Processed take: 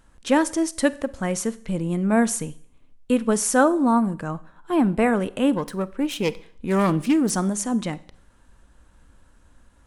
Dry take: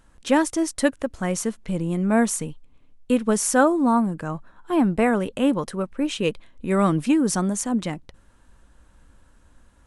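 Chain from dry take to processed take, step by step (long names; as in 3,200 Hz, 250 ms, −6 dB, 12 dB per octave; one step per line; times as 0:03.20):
0:05.56–0:07.30: phase distortion by the signal itself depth 0.18 ms
four-comb reverb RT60 0.55 s, combs from 31 ms, DRR 17.5 dB
every ending faded ahead of time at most 460 dB per second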